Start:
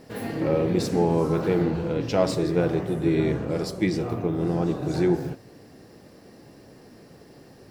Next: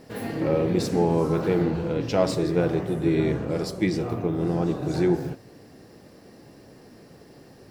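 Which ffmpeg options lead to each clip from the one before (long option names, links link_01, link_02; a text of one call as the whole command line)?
ffmpeg -i in.wav -af anull out.wav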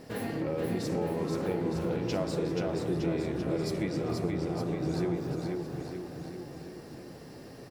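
ffmpeg -i in.wav -af "acompressor=threshold=-31dB:ratio=4,aecho=1:1:480|912|1301|1651|1966:0.631|0.398|0.251|0.158|0.1" out.wav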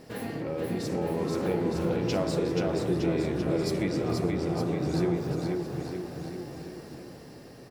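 ffmpeg -i in.wav -af "bandreject=frequency=53.77:width_type=h:width=4,bandreject=frequency=107.54:width_type=h:width=4,bandreject=frequency=161.31:width_type=h:width=4,bandreject=frequency=215.08:width_type=h:width=4,bandreject=frequency=268.85:width_type=h:width=4,bandreject=frequency=322.62:width_type=h:width=4,bandreject=frequency=376.39:width_type=h:width=4,bandreject=frequency=430.16:width_type=h:width=4,bandreject=frequency=483.93:width_type=h:width=4,bandreject=frequency=537.7:width_type=h:width=4,bandreject=frequency=591.47:width_type=h:width=4,bandreject=frequency=645.24:width_type=h:width=4,bandreject=frequency=699.01:width_type=h:width=4,bandreject=frequency=752.78:width_type=h:width=4,bandreject=frequency=806.55:width_type=h:width=4,bandreject=frequency=860.32:width_type=h:width=4,bandreject=frequency=914.09:width_type=h:width=4,bandreject=frequency=967.86:width_type=h:width=4,bandreject=frequency=1021.63:width_type=h:width=4,bandreject=frequency=1075.4:width_type=h:width=4,bandreject=frequency=1129.17:width_type=h:width=4,bandreject=frequency=1182.94:width_type=h:width=4,bandreject=frequency=1236.71:width_type=h:width=4,bandreject=frequency=1290.48:width_type=h:width=4,bandreject=frequency=1344.25:width_type=h:width=4,bandreject=frequency=1398.02:width_type=h:width=4,bandreject=frequency=1451.79:width_type=h:width=4,bandreject=frequency=1505.56:width_type=h:width=4,bandreject=frequency=1559.33:width_type=h:width=4,bandreject=frequency=1613.1:width_type=h:width=4,bandreject=frequency=1666.87:width_type=h:width=4,bandreject=frequency=1720.64:width_type=h:width=4,bandreject=frequency=1774.41:width_type=h:width=4,bandreject=frequency=1828.18:width_type=h:width=4,bandreject=frequency=1881.95:width_type=h:width=4,bandreject=frequency=1935.72:width_type=h:width=4,bandreject=frequency=1989.49:width_type=h:width=4,bandreject=frequency=2043.26:width_type=h:width=4,bandreject=frequency=2097.03:width_type=h:width=4,dynaudnorm=framelen=240:gausssize=9:maxgain=4dB" out.wav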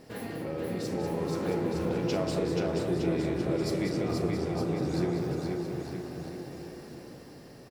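ffmpeg -i in.wav -filter_complex "[0:a]asplit=2[link_01][link_02];[link_02]adelay=37,volume=-12dB[link_03];[link_01][link_03]amix=inputs=2:normalize=0,aecho=1:1:193:0.422,volume=-2.5dB" out.wav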